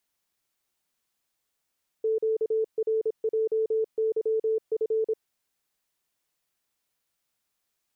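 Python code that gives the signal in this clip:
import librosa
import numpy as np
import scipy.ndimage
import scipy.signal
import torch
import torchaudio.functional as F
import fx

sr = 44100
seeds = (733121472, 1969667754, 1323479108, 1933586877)

y = fx.morse(sr, text='QRJYF', wpm=26, hz=441.0, level_db=-22.0)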